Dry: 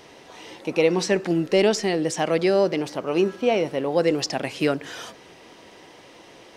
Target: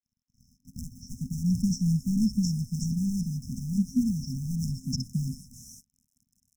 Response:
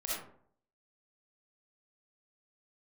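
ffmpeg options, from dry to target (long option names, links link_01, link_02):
-filter_complex "[0:a]equalizer=frequency=2600:width=0.88:gain=5,aeval=exprs='sgn(val(0))*max(abs(val(0))-0.0133,0)':channel_layout=same,acrossover=split=1000|3800[link_01][link_02][link_03];[link_01]adelay=540[link_04];[link_03]adelay=700[link_05];[link_04][link_02][link_05]amix=inputs=3:normalize=0,asplit=2[link_06][link_07];[link_07]acrusher=samples=32:mix=1:aa=0.000001,volume=-9.5dB[link_08];[link_06][link_08]amix=inputs=2:normalize=0,acrossover=split=4600[link_09][link_10];[link_10]acompressor=threshold=-51dB:ratio=4:attack=1:release=60[link_11];[link_09][link_11]amix=inputs=2:normalize=0,asoftclip=type=hard:threshold=-16.5dB,afftfilt=real='re*(1-between(b*sr/4096,260,5200))':imag='im*(1-between(b*sr/4096,260,5200))':win_size=4096:overlap=0.75,volume=5dB"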